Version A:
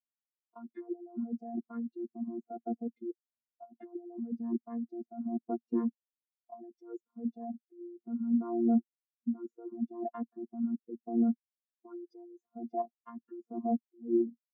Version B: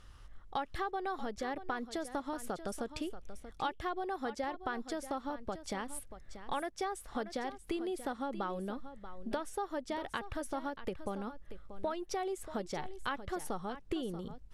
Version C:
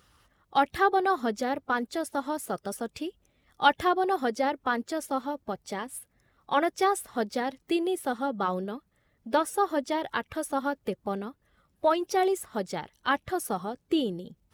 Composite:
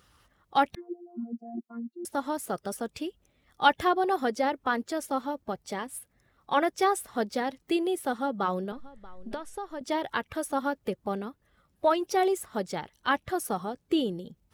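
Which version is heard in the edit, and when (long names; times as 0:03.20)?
C
0:00.75–0:02.05: punch in from A
0:08.72–0:09.81: punch in from B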